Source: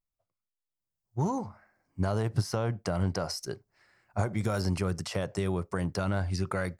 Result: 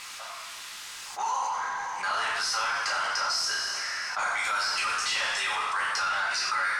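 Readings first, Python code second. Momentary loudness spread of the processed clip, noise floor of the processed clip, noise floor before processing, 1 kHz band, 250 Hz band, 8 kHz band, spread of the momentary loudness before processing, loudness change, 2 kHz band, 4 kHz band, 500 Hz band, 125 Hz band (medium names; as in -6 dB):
12 LU, -41 dBFS, under -85 dBFS, +10.5 dB, -24.5 dB, +11.0 dB, 8 LU, +4.0 dB, +15.0 dB, +13.5 dB, -9.5 dB, under -30 dB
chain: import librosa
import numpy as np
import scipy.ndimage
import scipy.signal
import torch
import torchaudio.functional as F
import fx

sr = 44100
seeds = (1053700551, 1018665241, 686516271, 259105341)

y = scipy.signal.sosfilt(scipy.signal.butter(4, 1100.0, 'highpass', fs=sr, output='sos'), x)
y = fx.rev_double_slope(y, sr, seeds[0], early_s=0.7, late_s=2.0, knee_db=-16, drr_db=-6.5)
y = fx.power_curve(y, sr, exponent=0.7)
y = scipy.signal.sosfilt(scipy.signal.bessel(2, 5300.0, 'lowpass', norm='mag', fs=sr, output='sos'), y)
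y = fx.env_flatten(y, sr, amount_pct=70)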